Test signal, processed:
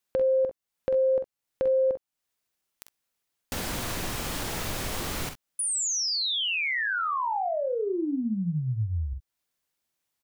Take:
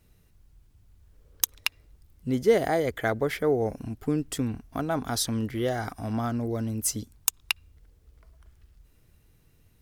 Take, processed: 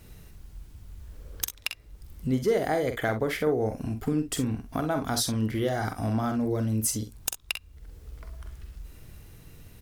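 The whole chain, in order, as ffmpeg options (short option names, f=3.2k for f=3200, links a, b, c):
-filter_complex "[0:a]acompressor=threshold=-47dB:ratio=2,aeval=exprs='0.168*(cos(1*acos(clip(val(0)/0.168,-1,1)))-cos(1*PI/2))+0.00944*(cos(2*acos(clip(val(0)/0.168,-1,1)))-cos(2*PI/2))+0.0335*(cos(5*acos(clip(val(0)/0.168,-1,1)))-cos(5*PI/2))':c=same,asplit=2[a][b];[b]aecho=0:1:46|63:0.398|0.188[c];[a][c]amix=inputs=2:normalize=0,volume=6dB"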